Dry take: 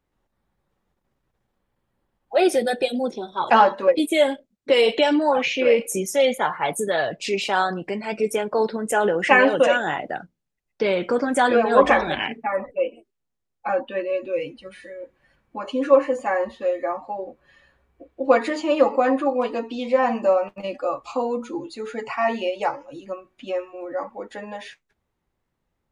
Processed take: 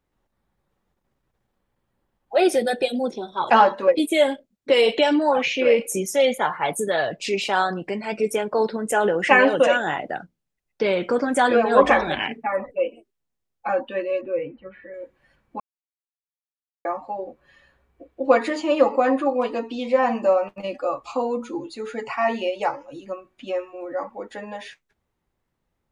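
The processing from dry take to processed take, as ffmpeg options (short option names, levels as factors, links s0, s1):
-filter_complex "[0:a]asettb=1/sr,asplit=3[s0][s1][s2];[s0]atrim=end=14.214[s3];[s1]atrim=start=14.21:end=14.94,asetpts=PTS-STARTPTS,afade=t=in:d=0.004:c=qsin,afade=t=out:st=0.726:d=0.004:c=qsin,lowpass=f=2000:w=0.5412,lowpass=f=2000:w=1.3066[s4];[s2]atrim=start=14.936[s5];[s3][s4]acrossfade=d=0.004:c1=hsin:c2=qsin[s6];[s6][s5]acrossfade=d=0.004:c1=qsin:c2=hsin,asplit=3[s7][s8][s9];[s7]atrim=end=15.6,asetpts=PTS-STARTPTS,afade=t=out:st=15.596:d=0.004:c=hsin[s10];[s8]atrim=start=15.6:end=16.85,asetpts=PTS-STARTPTS,volume=0[s11];[s9]atrim=start=16.85,asetpts=PTS-STARTPTS,afade=t=in:d=0.004:c=hsin[s12];[s10][s11][s12]concat=n=3:v=0:a=1"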